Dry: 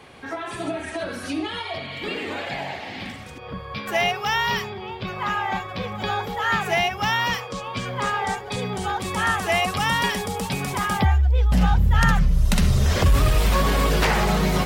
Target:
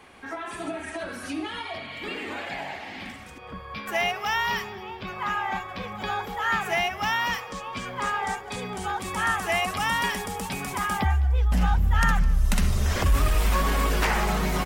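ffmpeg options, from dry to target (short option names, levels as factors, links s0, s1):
-filter_complex "[0:a]equalizer=f=125:t=o:w=1:g=-10,equalizer=f=500:t=o:w=1:g=-5,equalizer=f=4000:t=o:w=1:g=-5,asplit=4[s0][s1][s2][s3];[s1]adelay=209,afreqshift=-31,volume=0.1[s4];[s2]adelay=418,afreqshift=-62,volume=0.0339[s5];[s3]adelay=627,afreqshift=-93,volume=0.0116[s6];[s0][s4][s5][s6]amix=inputs=4:normalize=0,volume=0.841"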